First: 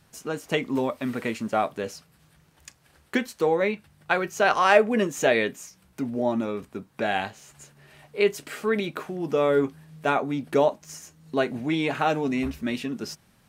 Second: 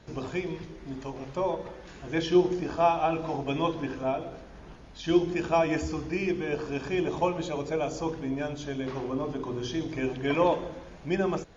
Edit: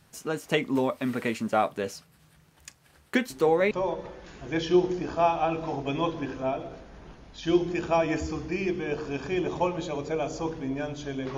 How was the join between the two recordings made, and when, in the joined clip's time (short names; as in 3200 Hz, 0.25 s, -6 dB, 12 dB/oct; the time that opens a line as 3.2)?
first
3.3 add second from 0.91 s 0.41 s -8 dB
3.71 switch to second from 1.32 s